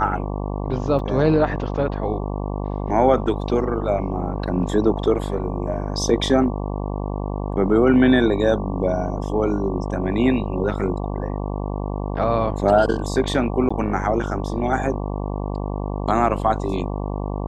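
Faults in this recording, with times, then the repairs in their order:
buzz 50 Hz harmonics 23 -26 dBFS
0.99 gap 2.6 ms
13.69–13.71 gap 15 ms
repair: de-hum 50 Hz, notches 23; interpolate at 0.99, 2.6 ms; interpolate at 13.69, 15 ms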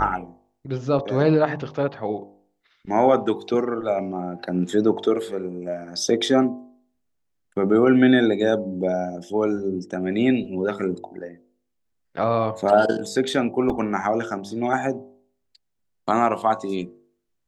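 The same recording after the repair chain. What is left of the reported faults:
none

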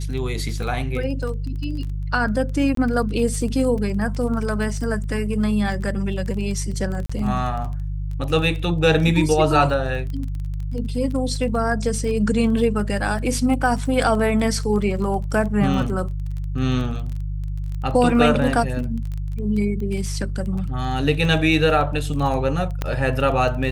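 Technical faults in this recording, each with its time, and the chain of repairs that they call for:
crackle 22/s -28 dBFS
hum 50 Hz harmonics 3 -26 dBFS
2.75–2.77 gap 23 ms
7.06–7.09 gap 35 ms
22.82 pop -10 dBFS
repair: de-click; de-hum 50 Hz, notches 3; interpolate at 2.75, 23 ms; interpolate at 7.06, 35 ms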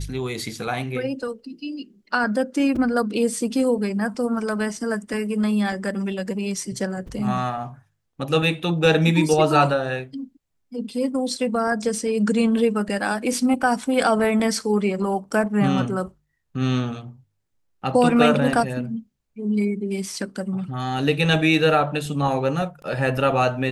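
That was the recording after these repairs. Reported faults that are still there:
22.82 pop

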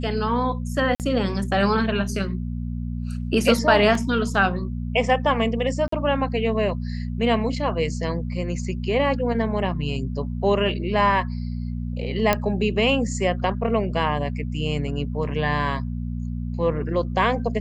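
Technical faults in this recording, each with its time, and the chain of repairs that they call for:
hum 60 Hz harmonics 4 -28 dBFS
0.95–1 gap 48 ms
3.95 gap 2.4 ms
5.88–5.92 gap 44 ms
12.33 pop -5 dBFS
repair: de-click; de-hum 60 Hz, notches 4; interpolate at 0.95, 48 ms; interpolate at 3.95, 2.4 ms; interpolate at 5.88, 44 ms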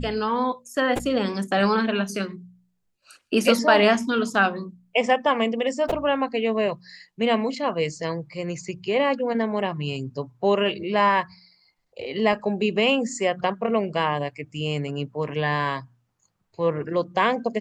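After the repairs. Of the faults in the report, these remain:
none

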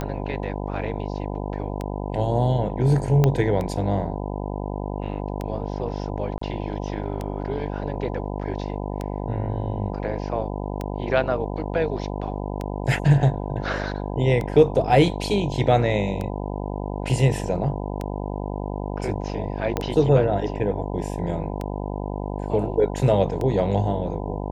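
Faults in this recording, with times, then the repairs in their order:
buzz 50 Hz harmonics 20 -29 dBFS
tick 33 1/3 rpm -16 dBFS
3.24 pop -7 dBFS
6.38–6.41 gap 34 ms
19.77 pop -9 dBFS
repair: de-click; de-hum 50 Hz, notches 20; interpolate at 6.38, 34 ms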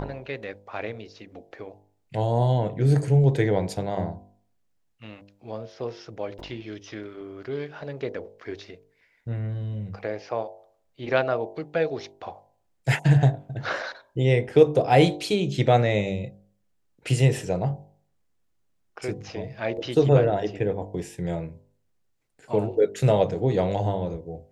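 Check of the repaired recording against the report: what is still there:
3.24 pop
19.77 pop

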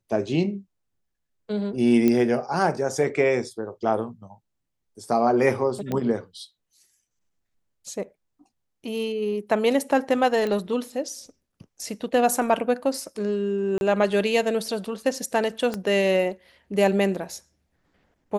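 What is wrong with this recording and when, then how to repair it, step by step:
2.08 pop -9 dBFS
5.92 pop -15 dBFS
10.47 pop -17 dBFS
13.78–13.81 gap 31 ms
15.74 pop -15 dBFS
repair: de-click; interpolate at 13.78, 31 ms

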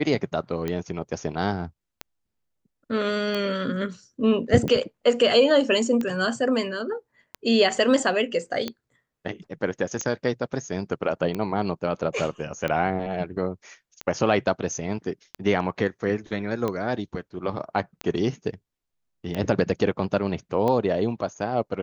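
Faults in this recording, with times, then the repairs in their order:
tick 45 rpm -15 dBFS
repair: de-click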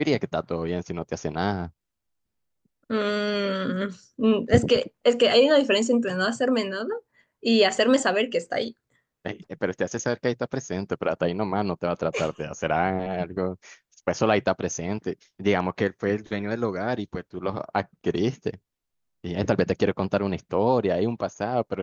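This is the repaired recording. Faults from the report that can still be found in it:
none

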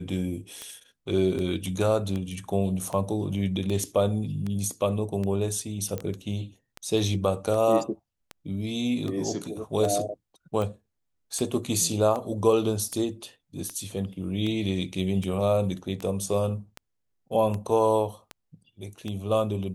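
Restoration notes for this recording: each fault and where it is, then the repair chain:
tick 78 rpm -20 dBFS
5.98 pop -18 dBFS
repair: de-click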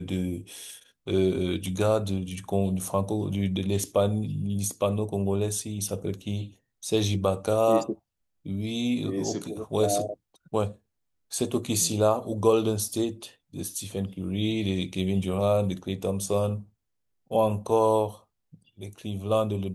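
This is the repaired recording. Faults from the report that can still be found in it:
none

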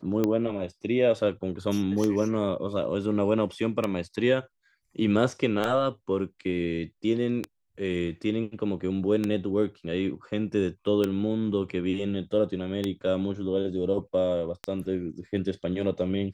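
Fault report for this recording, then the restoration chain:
tick 33 1/3 rpm -13 dBFS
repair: de-click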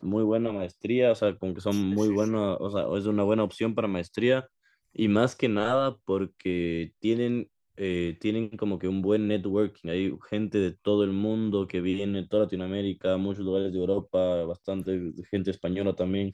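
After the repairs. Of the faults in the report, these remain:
none

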